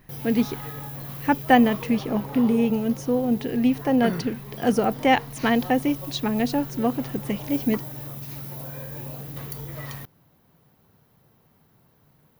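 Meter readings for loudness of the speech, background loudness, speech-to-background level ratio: -23.5 LUFS, -35.0 LUFS, 11.5 dB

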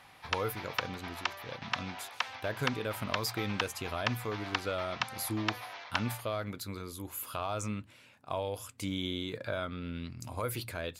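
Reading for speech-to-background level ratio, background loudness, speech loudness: 0.0 dB, -38.0 LUFS, -38.0 LUFS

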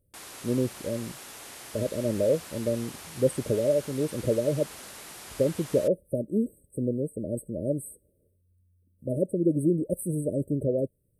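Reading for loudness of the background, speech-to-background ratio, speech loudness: -42.0 LUFS, 13.0 dB, -29.0 LUFS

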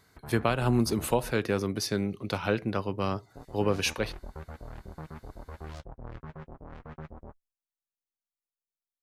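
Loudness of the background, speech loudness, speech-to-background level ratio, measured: -46.0 LUFS, -29.5 LUFS, 16.5 dB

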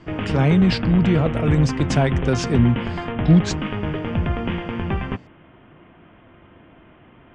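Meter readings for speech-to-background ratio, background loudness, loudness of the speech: 6.0 dB, -25.5 LUFS, -19.5 LUFS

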